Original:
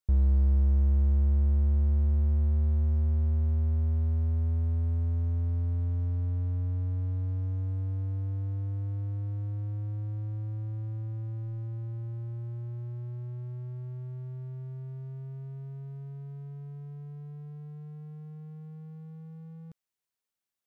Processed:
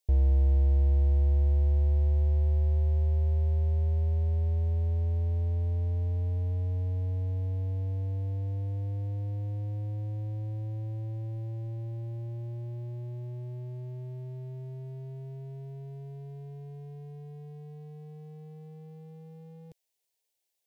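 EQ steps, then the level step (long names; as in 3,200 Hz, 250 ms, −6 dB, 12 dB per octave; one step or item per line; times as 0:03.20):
low-shelf EQ 130 Hz −8.5 dB
phaser with its sweep stopped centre 530 Hz, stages 4
+8.0 dB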